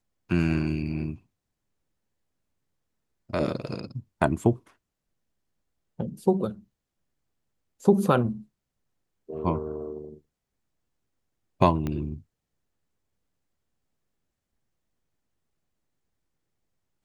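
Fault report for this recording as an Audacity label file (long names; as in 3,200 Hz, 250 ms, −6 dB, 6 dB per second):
11.870000	11.870000	click −18 dBFS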